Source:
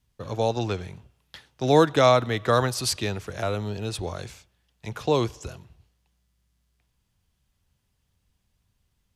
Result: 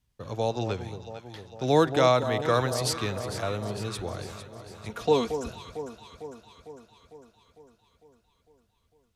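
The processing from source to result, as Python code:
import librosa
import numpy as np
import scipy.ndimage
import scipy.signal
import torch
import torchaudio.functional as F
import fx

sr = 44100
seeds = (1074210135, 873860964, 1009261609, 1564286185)

y = fx.comb(x, sr, ms=4.3, depth=0.91, at=(4.89, 5.49))
y = fx.echo_alternate(y, sr, ms=226, hz=1000.0, feedback_pct=77, wet_db=-9.0)
y = F.gain(torch.from_numpy(y), -3.5).numpy()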